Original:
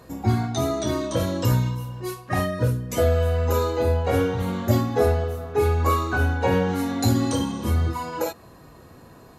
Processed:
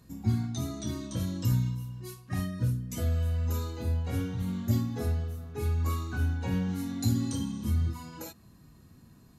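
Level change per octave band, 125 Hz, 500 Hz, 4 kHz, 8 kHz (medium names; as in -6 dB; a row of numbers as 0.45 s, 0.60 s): -5.5 dB, -19.0 dB, -10.0 dB, -7.5 dB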